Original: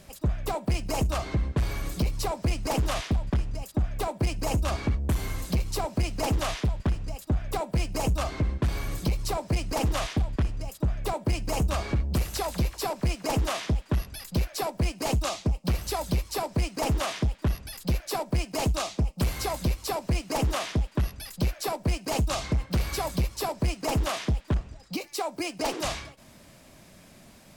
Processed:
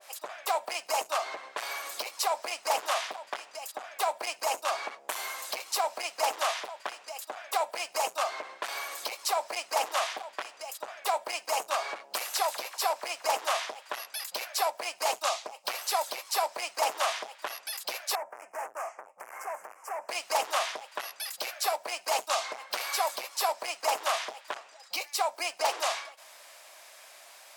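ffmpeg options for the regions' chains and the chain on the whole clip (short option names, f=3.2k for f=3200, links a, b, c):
-filter_complex "[0:a]asettb=1/sr,asplit=3[a][b][c];[a]atrim=end=18.154[d];[b]atrim=start=18.15:end=20.09,asetpts=PTS-STARTPTS,afade=t=in:d=0.004:c=qsin,afade=t=out:st=1.936:d=0.004:c=qsin,aemphasis=mode=reproduction:type=75kf,volume=34.5dB,asoftclip=hard,volume=-34.5dB,asuperstop=centerf=3800:order=4:qfactor=0.71[e];[c]atrim=start=20.086[f];[d][e]acrossfade=d=0.004:c1=hsin:c2=qsin[g];[g][f]acrossfade=d=0.004:c1=qsin:c2=hsin,asettb=1/sr,asplit=3[h][i][j];[h]atrim=end=21.254[k];[i]atrim=start=21.25:end=21.8,asetpts=PTS-STARTPTS,afade=t=in:d=0.004:c=qsin,afade=t=out:st=0.546:d=0.004:c=qsin,highpass=120,bandreject=f=980:w=14,acrusher=bits=8:mode=log:mix=0:aa=0.000001[l];[j]atrim=start=21.796[m];[k][l]acrossfade=d=0.004:c1=hsin:c2=qsin[n];[n][m]acrossfade=d=0.004:c1=qsin:c2=hsin,highpass=f=670:w=0.5412,highpass=f=670:w=1.3066,adynamicequalizer=threshold=0.00447:dfrequency=1500:dqfactor=0.7:tfrequency=1500:tqfactor=0.7:attack=5:release=100:ratio=0.375:range=2.5:mode=cutabove:tftype=highshelf,volume=5dB"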